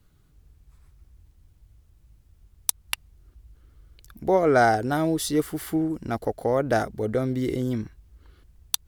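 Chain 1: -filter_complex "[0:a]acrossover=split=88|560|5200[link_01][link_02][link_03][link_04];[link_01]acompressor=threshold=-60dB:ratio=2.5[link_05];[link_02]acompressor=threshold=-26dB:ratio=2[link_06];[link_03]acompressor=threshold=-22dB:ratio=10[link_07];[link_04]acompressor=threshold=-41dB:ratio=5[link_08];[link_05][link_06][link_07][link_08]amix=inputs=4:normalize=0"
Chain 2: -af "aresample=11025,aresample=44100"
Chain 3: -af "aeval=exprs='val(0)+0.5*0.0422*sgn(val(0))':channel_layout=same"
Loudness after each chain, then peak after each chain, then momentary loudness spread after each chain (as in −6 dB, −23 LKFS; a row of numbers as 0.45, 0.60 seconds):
−28.0, −25.0, −24.5 LKFS; −6.0, −6.0, −2.5 dBFS; 13, 15, 16 LU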